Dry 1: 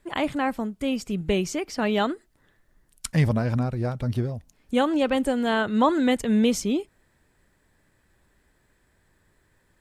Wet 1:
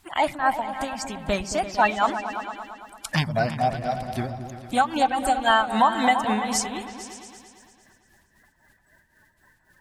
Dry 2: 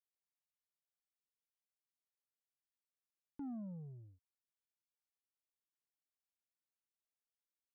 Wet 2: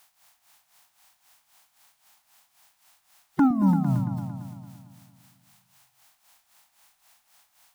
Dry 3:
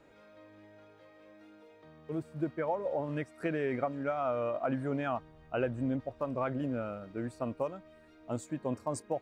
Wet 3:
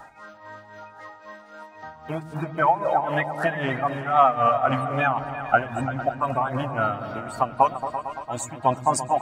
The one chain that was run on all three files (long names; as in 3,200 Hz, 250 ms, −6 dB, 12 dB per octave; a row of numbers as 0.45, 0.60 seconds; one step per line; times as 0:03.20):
spectral magnitudes quantised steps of 30 dB
in parallel at −2.5 dB: downward compressor, threshold −33 dBFS
on the sum: amplitude tremolo 3.8 Hz, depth 78%
low shelf with overshoot 600 Hz −8 dB, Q 3
on a send: echo whose low-pass opens from repeat to repeat 113 ms, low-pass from 200 Hz, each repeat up 2 octaves, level −6 dB
on the sum: boost into a limiter +12.5 dB
loudness normalisation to −24 LKFS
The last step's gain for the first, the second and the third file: −7.0, +19.5, +1.0 decibels